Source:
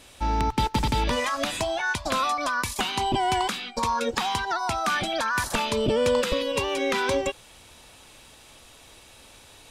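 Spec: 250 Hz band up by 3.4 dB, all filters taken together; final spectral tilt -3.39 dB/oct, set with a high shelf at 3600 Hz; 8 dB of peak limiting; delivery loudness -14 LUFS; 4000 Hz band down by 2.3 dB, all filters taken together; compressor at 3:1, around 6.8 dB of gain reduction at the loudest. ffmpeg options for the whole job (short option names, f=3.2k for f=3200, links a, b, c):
-af "equalizer=f=250:t=o:g=4,highshelf=f=3.6k:g=4.5,equalizer=f=4k:t=o:g=-6,acompressor=threshold=-27dB:ratio=3,volume=17.5dB,alimiter=limit=-5dB:level=0:latency=1"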